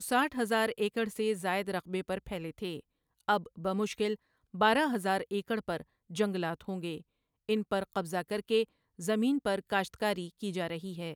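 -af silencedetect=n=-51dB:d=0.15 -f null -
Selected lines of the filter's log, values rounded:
silence_start: 2.80
silence_end: 3.21 | silence_duration: 0.40
silence_start: 4.16
silence_end: 4.54 | silence_duration: 0.38
silence_start: 5.83
silence_end: 6.10 | silence_duration: 0.27
silence_start: 7.02
silence_end: 7.49 | silence_duration: 0.47
silence_start: 8.65
silence_end: 8.99 | silence_duration: 0.34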